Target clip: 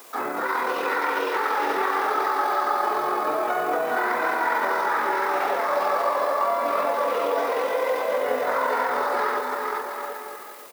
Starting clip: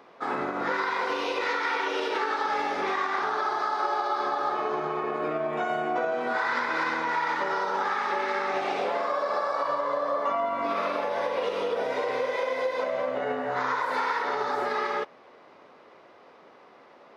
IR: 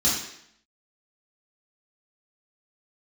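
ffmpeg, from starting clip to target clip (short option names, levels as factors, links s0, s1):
-filter_complex "[0:a]highpass=250,acrossover=split=620|1800[s0][s1][s2];[s2]acompressor=threshold=0.00224:ratio=5[s3];[s0][s1][s3]amix=inputs=3:normalize=0,aecho=1:1:660|1155|1526|1805|2014:0.631|0.398|0.251|0.158|0.1,acrusher=bits=9:mix=0:aa=0.000001,atempo=1.6,crystalizer=i=4.5:c=0,volume=1.26"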